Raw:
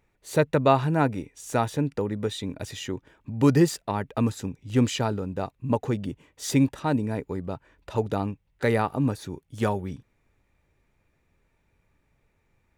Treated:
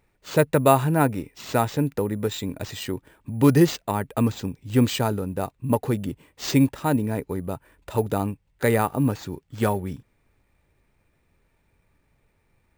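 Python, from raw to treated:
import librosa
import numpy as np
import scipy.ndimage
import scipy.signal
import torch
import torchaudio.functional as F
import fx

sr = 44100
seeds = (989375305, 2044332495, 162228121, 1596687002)

y = np.repeat(x[::4], 4)[:len(x)]
y = F.gain(torch.from_numpy(y), 2.5).numpy()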